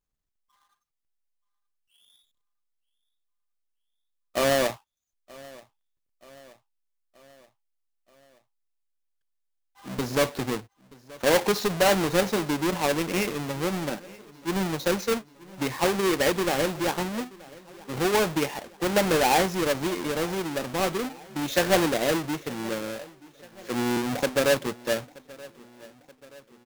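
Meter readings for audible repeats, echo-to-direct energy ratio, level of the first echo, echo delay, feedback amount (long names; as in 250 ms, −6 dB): 3, −20.5 dB, −22.0 dB, 928 ms, 57%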